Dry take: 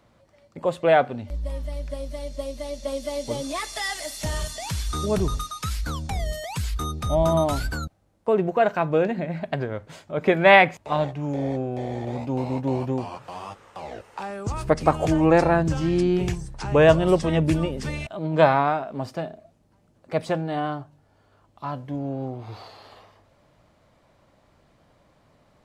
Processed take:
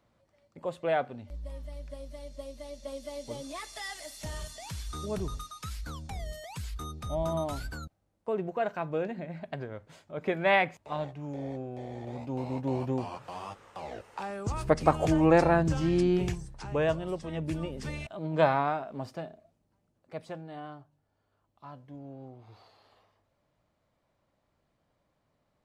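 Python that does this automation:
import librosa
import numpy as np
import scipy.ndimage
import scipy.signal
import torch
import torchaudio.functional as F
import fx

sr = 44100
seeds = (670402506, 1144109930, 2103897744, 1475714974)

y = fx.gain(x, sr, db=fx.line((11.91, -10.5), (13.04, -4.0), (16.15, -4.0), (17.17, -16.0), (17.88, -7.0), (18.95, -7.0), (20.28, -15.5)))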